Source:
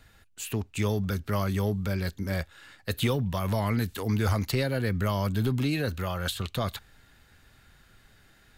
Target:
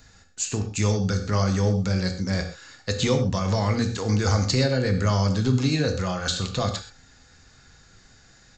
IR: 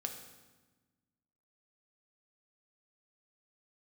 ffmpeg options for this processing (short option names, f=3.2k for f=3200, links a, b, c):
-filter_complex "[0:a]aresample=16000,aresample=44100,highshelf=f=5.6k:g=-9.5[a];[1:a]atrim=start_sample=2205,atrim=end_sample=6174[b];[a][b]afir=irnorm=-1:irlink=0,aexciter=amount=5.2:drive=6.6:freq=4.5k,volume=5dB"